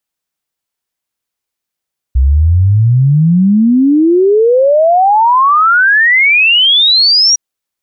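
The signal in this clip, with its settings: log sweep 62 Hz -> 5.8 kHz 5.21 s -5 dBFS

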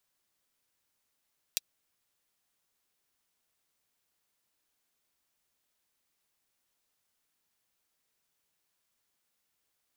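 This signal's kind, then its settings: closed hi-hat, high-pass 3.5 kHz, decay 0.03 s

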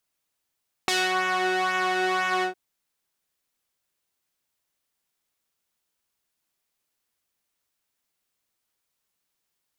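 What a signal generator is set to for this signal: synth patch with pulse-width modulation F#4, sub -13 dB, filter bandpass, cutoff 660 Hz, Q 0.72, filter envelope 3 oct, attack 1.6 ms, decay 0.26 s, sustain -6.5 dB, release 0.11 s, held 1.55 s, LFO 2 Hz, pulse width 22%, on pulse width 14%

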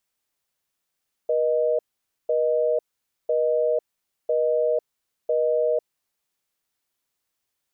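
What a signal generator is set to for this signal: call progress tone busy tone, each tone -21.5 dBFS 4.53 s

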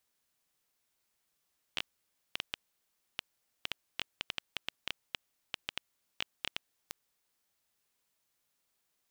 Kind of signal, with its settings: random clicks 5.4 per s -15.5 dBFS 5.22 s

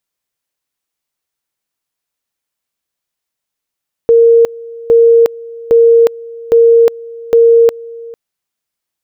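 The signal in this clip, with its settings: two-level tone 463 Hz -3 dBFS, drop 22 dB, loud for 0.36 s, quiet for 0.45 s, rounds 5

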